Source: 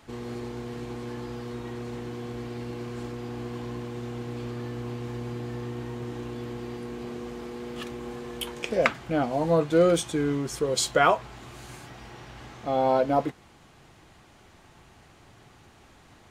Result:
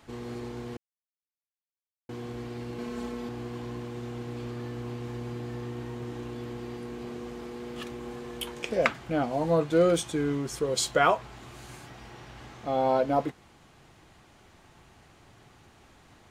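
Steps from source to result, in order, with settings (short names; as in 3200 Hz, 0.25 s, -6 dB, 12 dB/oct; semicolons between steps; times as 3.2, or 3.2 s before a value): 0.77–2.09 mute; 2.78–3.29 comb 4.6 ms, depth 91%; gain -2 dB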